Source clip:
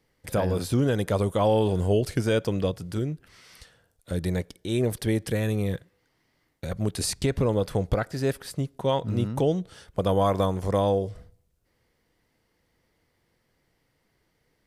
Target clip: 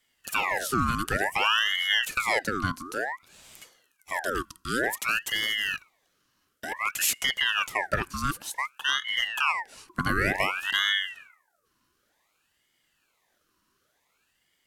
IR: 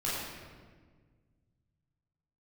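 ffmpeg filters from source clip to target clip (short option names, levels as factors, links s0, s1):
-af "bass=f=250:g=0,treble=f=4000:g=8,afreqshift=290,aeval=exprs='val(0)*sin(2*PI*1600*n/s+1600*0.6/0.55*sin(2*PI*0.55*n/s))':c=same"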